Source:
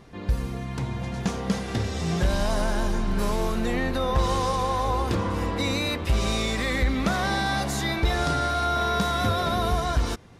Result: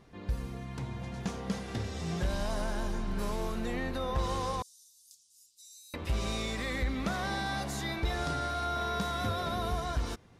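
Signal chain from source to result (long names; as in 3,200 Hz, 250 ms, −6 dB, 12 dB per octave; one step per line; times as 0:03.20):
0:04.62–0:05.94: inverse Chebyshev high-pass filter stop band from 1,900 Hz, stop band 60 dB
level −8.5 dB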